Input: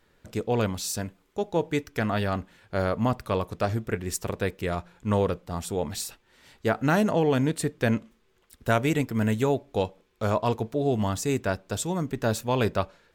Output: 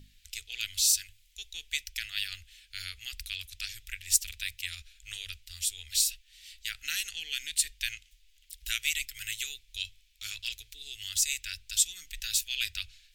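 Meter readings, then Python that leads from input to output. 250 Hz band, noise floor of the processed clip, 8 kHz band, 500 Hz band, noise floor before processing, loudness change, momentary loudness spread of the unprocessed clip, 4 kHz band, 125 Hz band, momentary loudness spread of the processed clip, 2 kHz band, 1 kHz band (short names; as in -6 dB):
under -40 dB, -63 dBFS, +8.0 dB, under -40 dB, -66 dBFS, -4.0 dB, 9 LU, +7.5 dB, -26.5 dB, 16 LU, -3.0 dB, -31.0 dB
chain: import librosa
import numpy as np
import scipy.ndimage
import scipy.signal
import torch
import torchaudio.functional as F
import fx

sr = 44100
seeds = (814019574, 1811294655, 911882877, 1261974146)

y = scipy.signal.sosfilt(scipy.signal.cheby2(4, 50, [120.0, 1100.0], 'bandstop', fs=sr, output='sos'), x)
y = fx.add_hum(y, sr, base_hz=50, snr_db=14)
y = fx.hum_notches(y, sr, base_hz=50, count=5)
y = y * librosa.db_to_amplitude(8.0)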